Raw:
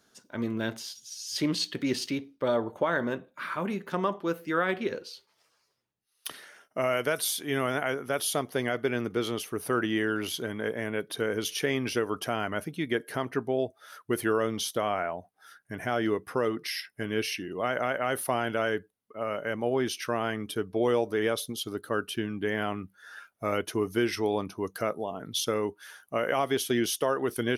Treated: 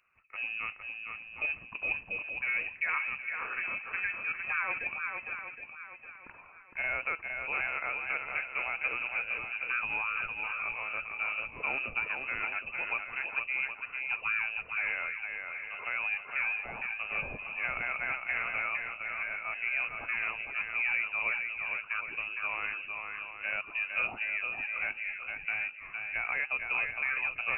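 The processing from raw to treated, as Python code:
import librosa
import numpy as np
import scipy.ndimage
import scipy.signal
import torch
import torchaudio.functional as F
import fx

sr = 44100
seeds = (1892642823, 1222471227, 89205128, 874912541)

p1 = fx.vibrato(x, sr, rate_hz=0.6, depth_cents=7.1)
p2 = p1 + fx.echo_swing(p1, sr, ms=766, ratio=1.5, feedback_pct=32, wet_db=-5.0, dry=0)
p3 = fx.freq_invert(p2, sr, carrier_hz=2800)
y = p3 * librosa.db_to_amplitude(-6.0)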